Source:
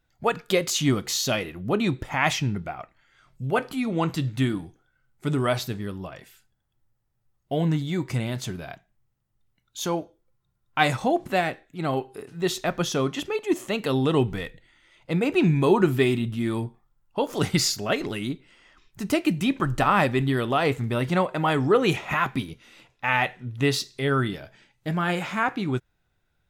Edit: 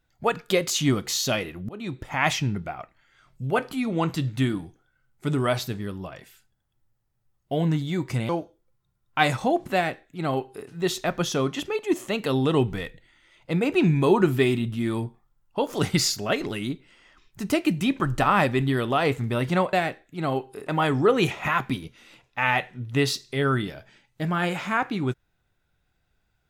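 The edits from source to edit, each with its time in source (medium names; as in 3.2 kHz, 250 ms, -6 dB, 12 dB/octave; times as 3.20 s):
1.69–2.24 s: fade in linear, from -22.5 dB
8.29–9.89 s: delete
11.34–12.28 s: copy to 21.33 s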